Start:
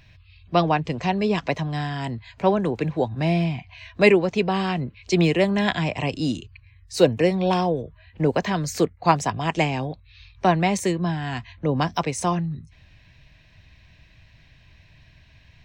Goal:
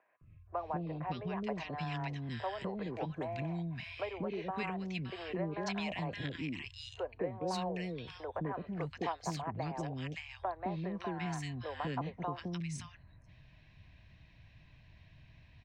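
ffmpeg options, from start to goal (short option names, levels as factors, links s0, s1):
-filter_complex "[0:a]aemphasis=mode=reproduction:type=75fm,acrossover=split=80|630[s0][s1][s2];[s0]acompressor=threshold=0.00141:ratio=4[s3];[s1]acompressor=threshold=0.02:ratio=4[s4];[s2]acompressor=threshold=0.0251:ratio=4[s5];[s3][s4][s5]amix=inputs=3:normalize=0,acrossover=split=450|1600[s6][s7][s8];[s6]adelay=210[s9];[s8]adelay=570[s10];[s9][s7][s10]amix=inputs=3:normalize=0,volume=0.562"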